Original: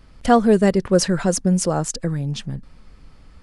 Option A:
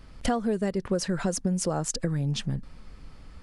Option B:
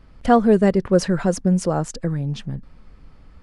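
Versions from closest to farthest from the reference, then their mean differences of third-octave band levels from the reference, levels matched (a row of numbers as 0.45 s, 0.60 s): B, A; 2.0 dB, 3.5 dB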